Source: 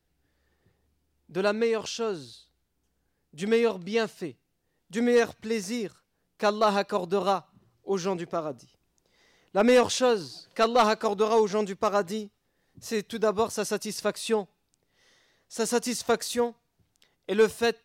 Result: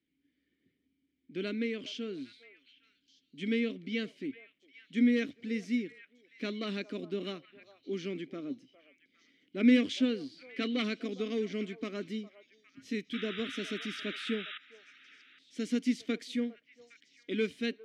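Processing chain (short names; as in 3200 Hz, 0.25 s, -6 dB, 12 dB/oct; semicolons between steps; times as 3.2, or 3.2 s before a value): vowel filter i; painted sound noise, 13.13–14.58, 1200–3900 Hz -51 dBFS; delay with a stepping band-pass 0.406 s, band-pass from 760 Hz, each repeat 1.4 oct, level -12 dB; gain +8 dB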